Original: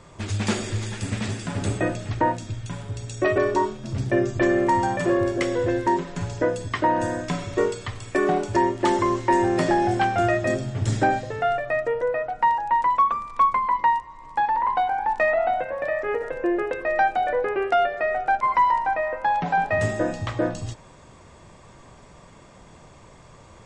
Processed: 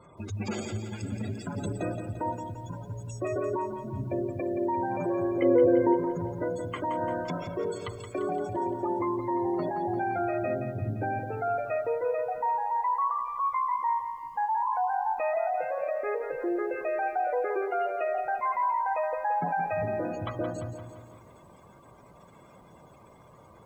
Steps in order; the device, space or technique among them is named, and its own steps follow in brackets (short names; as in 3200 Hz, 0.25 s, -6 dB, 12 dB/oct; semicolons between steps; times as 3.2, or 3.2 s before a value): spectral gate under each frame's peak -20 dB strong; PA system with an anti-feedback notch (HPF 140 Hz 6 dB/oct; Butterworth band-stop 1800 Hz, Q 6.8; limiter -19.5 dBFS, peak gain reduction 10 dB); 5.42–5.94 graphic EQ 250/500/4000 Hz +10/+8/+9 dB; lo-fi delay 0.172 s, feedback 55%, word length 10-bit, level -8.5 dB; gain -3.5 dB